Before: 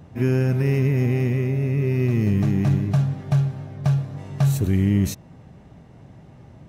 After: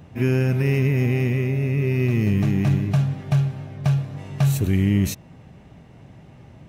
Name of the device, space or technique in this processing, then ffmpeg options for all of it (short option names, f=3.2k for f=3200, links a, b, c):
presence and air boost: -af "equalizer=f=2.6k:t=o:w=0.88:g=5.5,highshelf=f=10k:g=4"